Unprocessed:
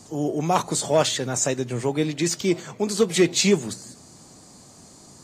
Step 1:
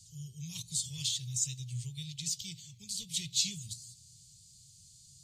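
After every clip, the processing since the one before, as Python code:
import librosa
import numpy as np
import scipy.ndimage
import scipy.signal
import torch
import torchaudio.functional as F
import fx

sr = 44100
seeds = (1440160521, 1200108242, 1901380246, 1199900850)

y = scipy.signal.sosfilt(scipy.signal.ellip(3, 1.0, 40, [130.0, 3300.0], 'bandstop', fs=sr, output='sos'), x)
y = y * 10.0 ** (-6.5 / 20.0)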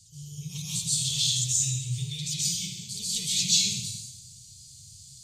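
y = fx.rev_plate(x, sr, seeds[0], rt60_s=0.84, hf_ratio=1.0, predelay_ms=115, drr_db=-7.5)
y = y * 10.0 ** (1.0 / 20.0)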